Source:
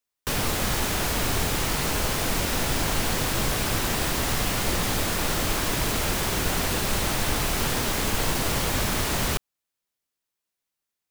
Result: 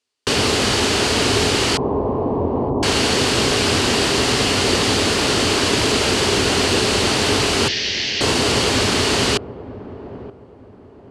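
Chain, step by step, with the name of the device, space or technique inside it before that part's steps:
0:01.77–0:02.83: Butterworth low-pass 1,100 Hz 96 dB per octave
0:07.68–0:08.21: elliptic band-pass filter 1,800–5,800 Hz, stop band 40 dB
car door speaker (loudspeaker in its box 90–9,000 Hz, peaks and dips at 93 Hz +4 dB, 160 Hz −6 dB, 260 Hz +5 dB, 410 Hz +9 dB, 2,900 Hz +6 dB, 4,500 Hz +7 dB)
delay with a low-pass on its return 926 ms, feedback 32%, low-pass 700 Hz, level −12.5 dB
level +7 dB

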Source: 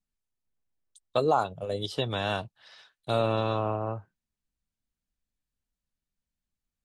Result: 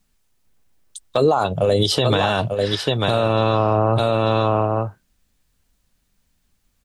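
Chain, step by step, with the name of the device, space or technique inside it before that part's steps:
single-tap delay 892 ms −9.5 dB
loud club master (downward compressor 2.5 to 1, threshold −29 dBFS, peak gain reduction 7.5 dB; hard clipping −17.5 dBFS, distortion −43 dB; boost into a limiter +27 dB)
level −6.5 dB

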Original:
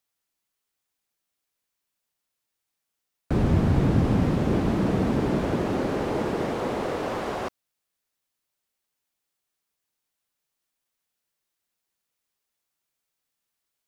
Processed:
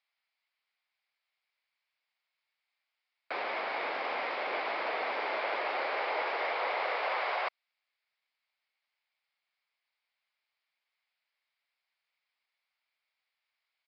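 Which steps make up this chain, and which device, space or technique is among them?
musical greeting card (downsampling to 11,025 Hz; high-pass filter 630 Hz 24 dB per octave; parametric band 2,200 Hz +10 dB 0.35 octaves)

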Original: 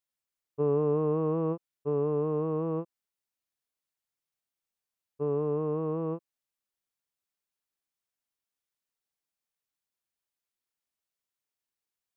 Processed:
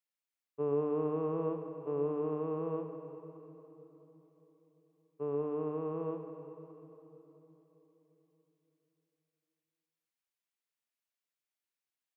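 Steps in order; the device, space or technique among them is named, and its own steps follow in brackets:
PA in a hall (high-pass filter 180 Hz 12 dB per octave; parametric band 2,300 Hz +4.5 dB 1.2 octaves; single-tap delay 97 ms −11.5 dB; convolution reverb RT60 3.8 s, pre-delay 79 ms, DRR 8 dB)
level −6 dB

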